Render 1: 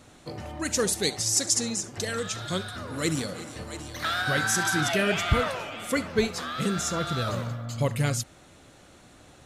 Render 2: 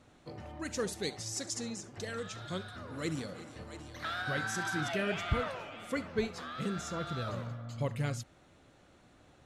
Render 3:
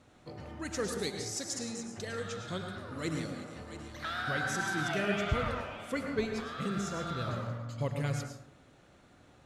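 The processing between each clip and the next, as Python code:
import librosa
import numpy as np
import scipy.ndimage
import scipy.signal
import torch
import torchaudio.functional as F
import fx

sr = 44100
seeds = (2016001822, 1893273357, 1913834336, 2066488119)

y1 = fx.lowpass(x, sr, hz=3300.0, slope=6)
y1 = y1 * 10.0 ** (-8.0 / 20.0)
y2 = fx.rev_plate(y1, sr, seeds[0], rt60_s=0.67, hf_ratio=0.5, predelay_ms=90, drr_db=4.0)
y2 = fx.cheby_harmonics(y2, sr, harmonics=(6,), levels_db=(-38,), full_scale_db=-18.5)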